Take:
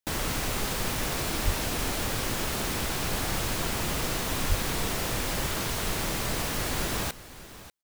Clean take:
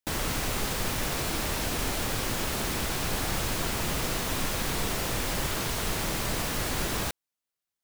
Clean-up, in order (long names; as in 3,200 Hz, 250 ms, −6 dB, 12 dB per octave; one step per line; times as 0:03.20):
high-pass at the plosives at 0:01.44/0:04.48
echo removal 591 ms −16 dB